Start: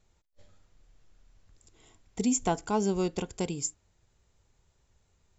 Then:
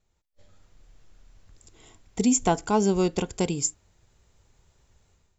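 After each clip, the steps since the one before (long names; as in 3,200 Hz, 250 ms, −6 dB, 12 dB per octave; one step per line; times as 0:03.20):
automatic gain control gain up to 12 dB
level −5.5 dB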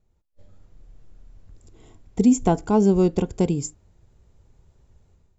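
tilt shelving filter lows +7 dB, about 830 Hz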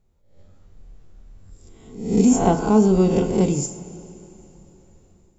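peak hold with a rise ahead of every peak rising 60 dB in 0.61 s
coupled-rooms reverb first 0.44 s, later 3.5 s, from −16 dB, DRR 5.5 dB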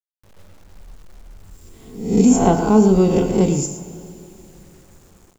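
bit reduction 9 bits
single-tap delay 112 ms −12 dB
level +2.5 dB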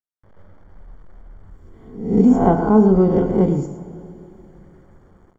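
Savitzky-Golay smoothing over 41 samples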